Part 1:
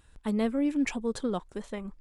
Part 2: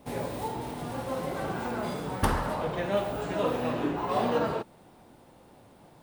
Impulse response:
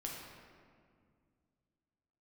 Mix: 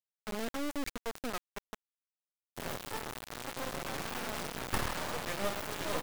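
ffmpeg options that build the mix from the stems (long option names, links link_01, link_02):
-filter_complex "[0:a]equalizer=frequency=1300:width=7.8:gain=14,dynaudnorm=framelen=150:gausssize=5:maxgain=3.5dB,volume=-10dB,asplit=2[link_01][link_02];[link_02]volume=-22.5dB[link_03];[1:a]equalizer=frequency=2300:width=0.71:gain=5,adelay=2500,volume=-5dB[link_04];[2:a]atrim=start_sample=2205[link_05];[link_03][link_05]afir=irnorm=-1:irlink=0[link_06];[link_01][link_04][link_06]amix=inputs=3:normalize=0,acrusher=bits=3:dc=4:mix=0:aa=0.000001"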